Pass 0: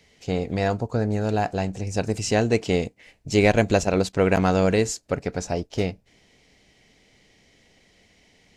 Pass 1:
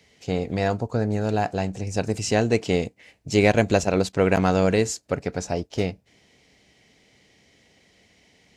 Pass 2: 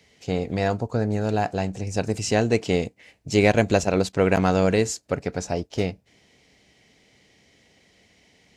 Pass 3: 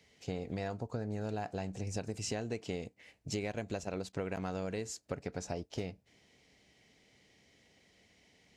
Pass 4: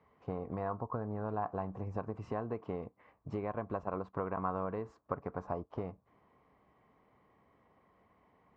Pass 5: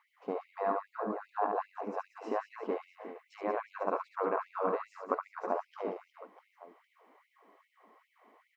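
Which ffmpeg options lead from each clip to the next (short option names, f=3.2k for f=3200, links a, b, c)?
-af "highpass=60"
-af anull
-af "acompressor=threshold=-26dB:ratio=12,volume=-7.5dB"
-af "lowpass=f=1.1k:t=q:w=9,volume=-1.5dB"
-af "aecho=1:1:70|182|361.2|647.9|1107:0.631|0.398|0.251|0.158|0.1,afftfilt=real='re*gte(b*sr/1024,200*pow(2100/200,0.5+0.5*sin(2*PI*2.5*pts/sr)))':imag='im*gte(b*sr/1024,200*pow(2100/200,0.5+0.5*sin(2*PI*2.5*pts/sr)))':win_size=1024:overlap=0.75,volume=5dB"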